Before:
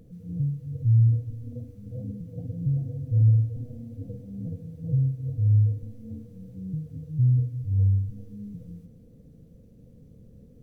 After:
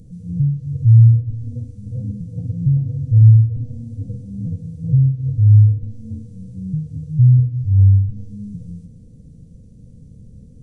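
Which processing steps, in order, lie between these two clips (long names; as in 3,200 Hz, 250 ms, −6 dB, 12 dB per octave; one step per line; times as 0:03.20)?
bass and treble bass +12 dB, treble +14 dB
treble cut that deepens with the level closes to 560 Hz, closed at −5 dBFS
downsampling to 22,050 Hz
level −1 dB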